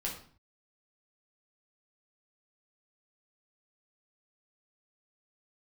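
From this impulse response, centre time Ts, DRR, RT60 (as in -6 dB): 28 ms, -3.5 dB, 0.45 s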